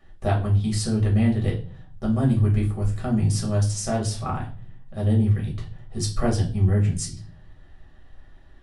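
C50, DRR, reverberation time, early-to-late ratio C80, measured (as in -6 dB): 10.5 dB, -3.5 dB, 0.45 s, 16.0 dB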